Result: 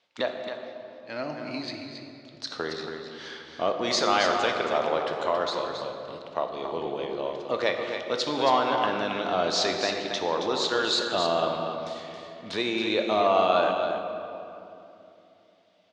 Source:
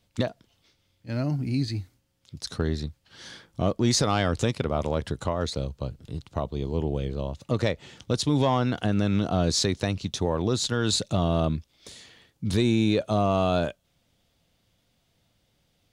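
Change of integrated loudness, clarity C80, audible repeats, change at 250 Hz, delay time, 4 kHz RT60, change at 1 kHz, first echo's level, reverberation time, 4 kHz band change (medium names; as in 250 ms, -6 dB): -0.5 dB, 3.0 dB, 1, -7.0 dB, 273 ms, 1.7 s, +5.5 dB, -7.5 dB, 2.9 s, +2.5 dB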